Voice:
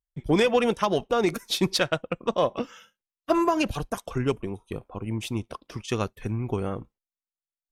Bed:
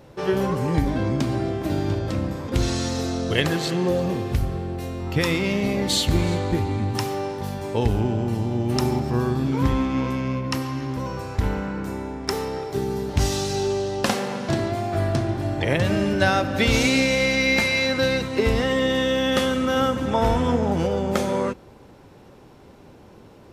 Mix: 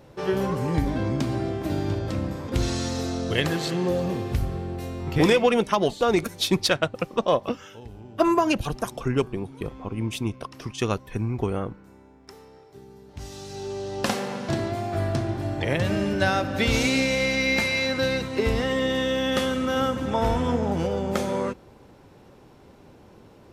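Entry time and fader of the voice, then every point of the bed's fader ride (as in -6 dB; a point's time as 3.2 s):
4.90 s, +2.0 dB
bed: 5.18 s -2.5 dB
5.56 s -21 dB
13.01 s -21 dB
14.05 s -3 dB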